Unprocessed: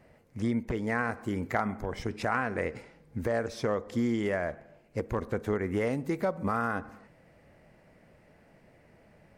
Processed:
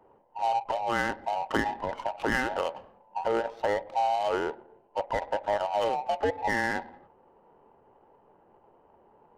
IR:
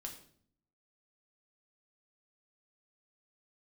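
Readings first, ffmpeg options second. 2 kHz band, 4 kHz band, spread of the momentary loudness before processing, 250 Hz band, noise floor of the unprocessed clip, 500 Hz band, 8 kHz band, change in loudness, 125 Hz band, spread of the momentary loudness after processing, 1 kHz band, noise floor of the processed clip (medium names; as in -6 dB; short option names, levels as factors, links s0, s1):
+3.0 dB, +8.0 dB, 8 LU, -6.0 dB, -61 dBFS, +2.0 dB, +3.0 dB, +2.0 dB, -9.5 dB, 8 LU, +7.5 dB, -62 dBFS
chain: -af "afftfilt=real='real(if(between(b,1,1008),(2*floor((b-1)/48)+1)*48-b,b),0)':imag='imag(if(between(b,1,1008),(2*floor((b-1)/48)+1)*48-b,b),0)*if(between(b,1,1008),-1,1)':win_size=2048:overlap=0.75,adynamicsmooth=sensitivity=6.5:basefreq=930,volume=1.26"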